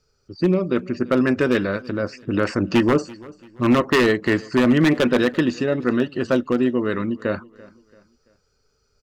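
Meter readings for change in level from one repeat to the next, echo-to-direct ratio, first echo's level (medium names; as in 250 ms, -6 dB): -8.0 dB, -21.5 dB, -22.0 dB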